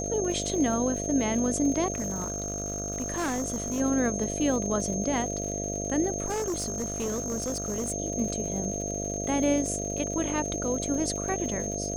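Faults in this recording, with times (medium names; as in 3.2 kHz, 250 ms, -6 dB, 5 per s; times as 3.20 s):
buzz 50 Hz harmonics 14 -34 dBFS
crackle 100 per s -35 dBFS
whine 6.4 kHz -33 dBFS
1.92–3.81 s: clipped -26 dBFS
6.26–7.92 s: clipped -26.5 dBFS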